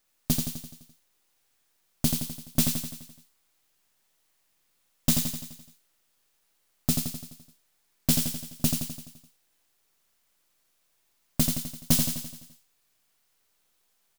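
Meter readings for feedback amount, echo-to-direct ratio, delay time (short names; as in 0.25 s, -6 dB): 56%, -3.5 dB, 85 ms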